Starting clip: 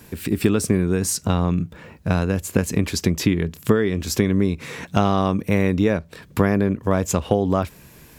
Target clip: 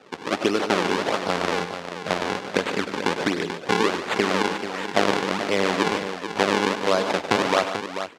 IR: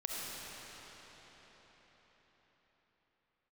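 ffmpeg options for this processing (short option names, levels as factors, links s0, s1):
-af "acrusher=samples=40:mix=1:aa=0.000001:lfo=1:lforange=64:lforate=1.4,highpass=420,lowpass=5100,aecho=1:1:100|146|437:0.251|0.266|0.355,volume=1.33"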